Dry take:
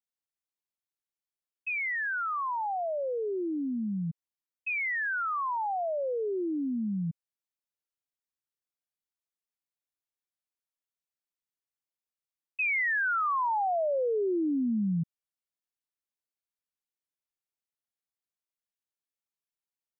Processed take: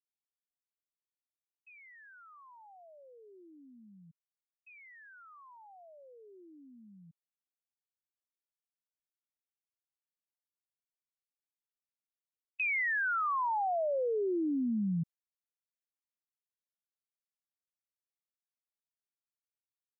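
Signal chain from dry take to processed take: gate with hold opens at -25 dBFS; trim -3.5 dB

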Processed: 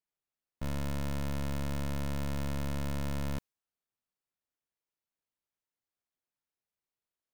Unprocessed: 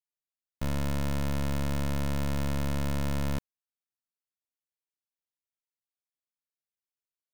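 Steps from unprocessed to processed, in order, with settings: saturation -37.5 dBFS, distortion -59 dB; tape noise reduction on one side only decoder only; trim +5 dB

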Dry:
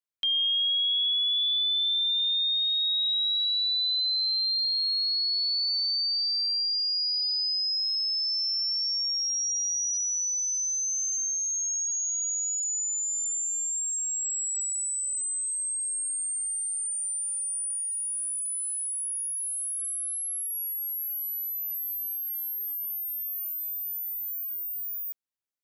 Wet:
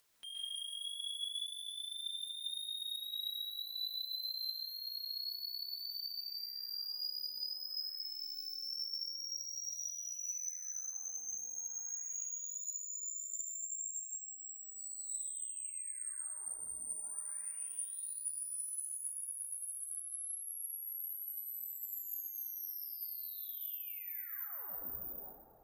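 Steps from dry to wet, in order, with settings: saturation -34 dBFS, distortion -10 dB; peak limiter -44 dBFS, peak gain reduction 10 dB; 14.08–14.78 s: inverse Chebyshev band-stop 2.4–5.3 kHz, stop band 50 dB; plate-style reverb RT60 2.7 s, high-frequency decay 0.25×, pre-delay 110 ms, DRR -8.5 dB; upward compressor, threshold -55 dBFS; flange 1.8 Hz, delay 1.5 ms, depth 3.9 ms, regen -26%; trim +1.5 dB

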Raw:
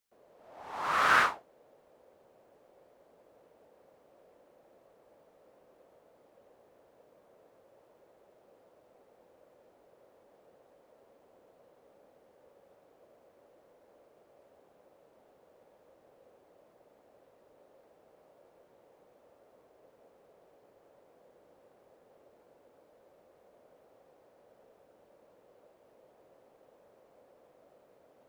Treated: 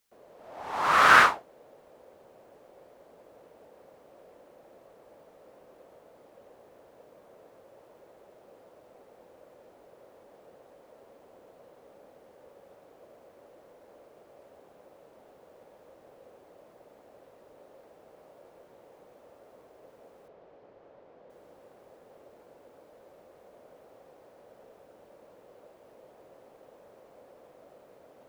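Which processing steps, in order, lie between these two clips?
20.28–21.30 s: distance through air 170 m; trim +7.5 dB

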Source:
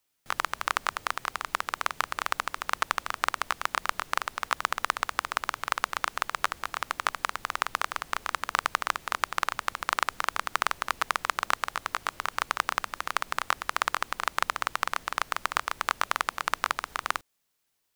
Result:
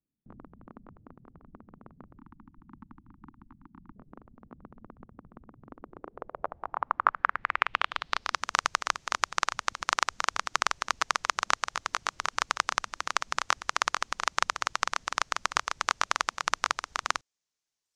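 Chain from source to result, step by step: 2.18–3.96 s: elliptic band-stop 320–870 Hz; reverb removal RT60 1.2 s; low-pass sweep 230 Hz -> 6.3 kHz, 5.60–8.45 s

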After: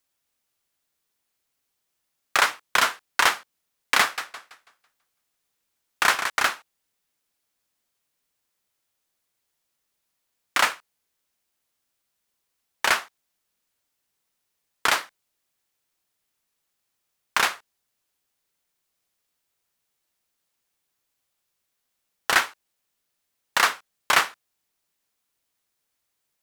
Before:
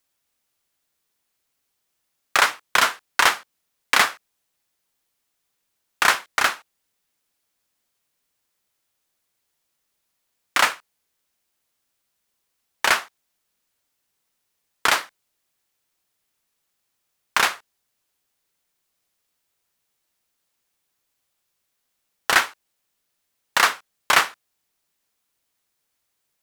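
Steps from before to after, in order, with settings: 4.01–6.30 s: modulated delay 165 ms, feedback 35%, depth 179 cents, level -8 dB; trim -2.5 dB

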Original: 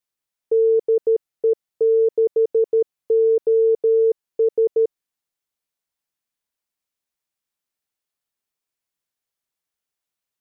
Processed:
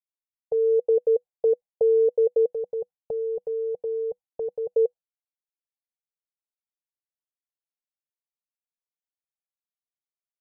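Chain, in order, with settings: fade-in on the opening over 1.24 s; gate with hold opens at -22 dBFS; 2.53–4.72 s: peaking EQ 470 Hz -13 dB 0.81 oct; peak limiter -16 dBFS, peak gain reduction 3.5 dB; FFT filter 190 Hz 0 dB, 320 Hz -20 dB, 490 Hz +8 dB, 800 Hz +7 dB, 1.2 kHz -14 dB; trim -1.5 dB

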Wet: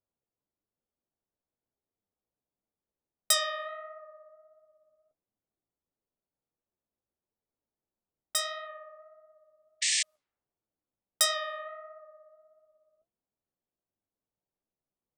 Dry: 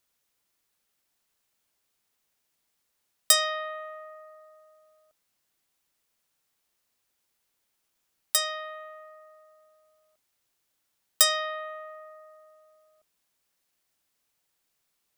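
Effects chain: flange 1.5 Hz, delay 8.8 ms, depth 9 ms, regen +40%; painted sound noise, 9.81–10.03 s, 1.7–8.9 kHz -27 dBFS; level-controlled noise filter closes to 590 Hz, open at -30 dBFS

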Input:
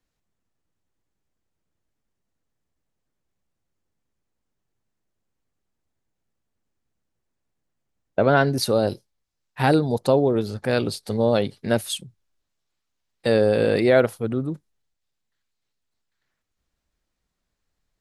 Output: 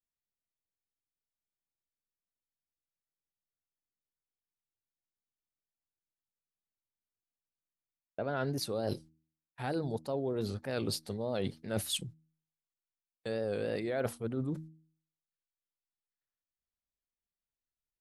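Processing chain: vibrato 3.3 Hz 88 cents; gate -44 dBFS, range -23 dB; reverse; compression 10:1, threshold -31 dBFS, peak gain reduction 19 dB; reverse; de-hum 79.32 Hz, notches 4

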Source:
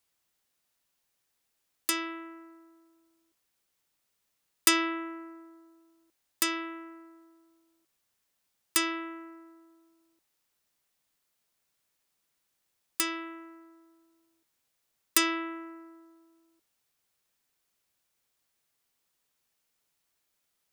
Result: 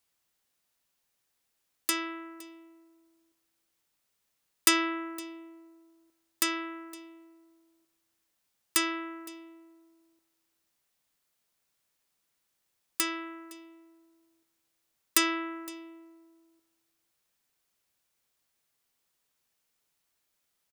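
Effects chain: delay 513 ms -21.5 dB

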